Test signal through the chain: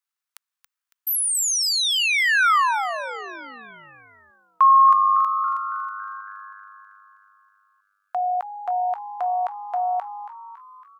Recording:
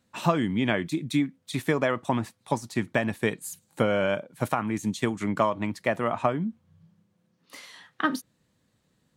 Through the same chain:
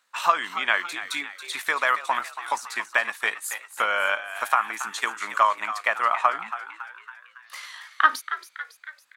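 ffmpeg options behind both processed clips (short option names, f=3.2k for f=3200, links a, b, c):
-filter_complex "[0:a]highpass=f=1.2k:t=q:w=1.9,tremolo=f=54:d=0.261,asplit=7[a][b][c][d][e][f][g];[b]adelay=278,afreqshift=100,volume=-12dB[h];[c]adelay=556,afreqshift=200,volume=-17.4dB[i];[d]adelay=834,afreqshift=300,volume=-22.7dB[j];[e]adelay=1112,afreqshift=400,volume=-28.1dB[k];[f]adelay=1390,afreqshift=500,volume=-33.4dB[l];[g]adelay=1668,afreqshift=600,volume=-38.8dB[m];[a][h][i][j][k][l][m]amix=inputs=7:normalize=0,volume=5.5dB"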